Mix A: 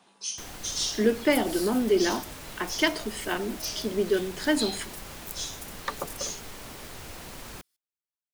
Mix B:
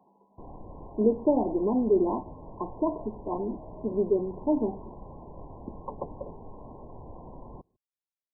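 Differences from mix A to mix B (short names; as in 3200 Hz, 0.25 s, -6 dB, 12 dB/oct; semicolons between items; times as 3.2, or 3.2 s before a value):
second sound: remove pre-emphasis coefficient 0.97; master: add brick-wall FIR low-pass 1100 Hz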